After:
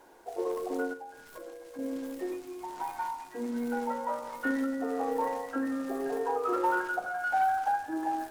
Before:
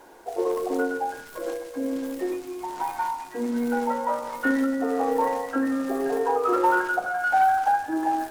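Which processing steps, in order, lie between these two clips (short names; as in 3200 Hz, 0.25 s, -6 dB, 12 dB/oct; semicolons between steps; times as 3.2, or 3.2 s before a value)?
0.93–1.79 compressor 6:1, threshold -35 dBFS, peak gain reduction 10.5 dB; gain -7 dB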